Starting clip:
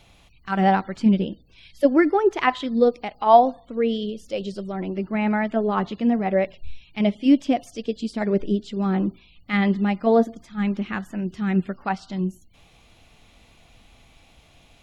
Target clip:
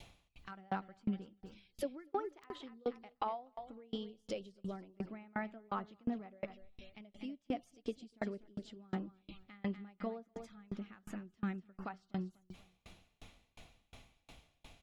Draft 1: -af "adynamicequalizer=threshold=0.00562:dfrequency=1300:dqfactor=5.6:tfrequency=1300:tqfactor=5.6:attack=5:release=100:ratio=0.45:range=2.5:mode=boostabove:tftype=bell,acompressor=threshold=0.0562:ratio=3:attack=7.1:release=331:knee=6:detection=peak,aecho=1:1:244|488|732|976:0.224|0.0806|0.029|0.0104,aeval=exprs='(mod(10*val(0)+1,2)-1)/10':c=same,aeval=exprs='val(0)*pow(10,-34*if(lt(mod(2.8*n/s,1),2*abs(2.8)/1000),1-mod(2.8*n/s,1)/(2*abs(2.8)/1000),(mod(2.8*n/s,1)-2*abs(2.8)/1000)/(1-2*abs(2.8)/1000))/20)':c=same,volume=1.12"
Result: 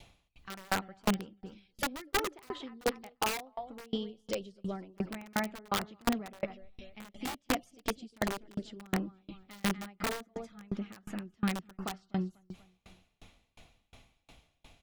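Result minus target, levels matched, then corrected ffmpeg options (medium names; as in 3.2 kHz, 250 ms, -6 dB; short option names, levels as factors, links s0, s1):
compression: peak gain reduction -7 dB
-af "adynamicequalizer=threshold=0.00562:dfrequency=1300:dqfactor=5.6:tfrequency=1300:tqfactor=5.6:attack=5:release=100:ratio=0.45:range=2.5:mode=boostabove:tftype=bell,acompressor=threshold=0.0168:ratio=3:attack=7.1:release=331:knee=6:detection=peak,aecho=1:1:244|488|732|976:0.224|0.0806|0.029|0.0104,aeval=exprs='(mod(10*val(0)+1,2)-1)/10':c=same,aeval=exprs='val(0)*pow(10,-34*if(lt(mod(2.8*n/s,1),2*abs(2.8)/1000),1-mod(2.8*n/s,1)/(2*abs(2.8)/1000),(mod(2.8*n/s,1)-2*abs(2.8)/1000)/(1-2*abs(2.8)/1000))/20)':c=same,volume=1.12"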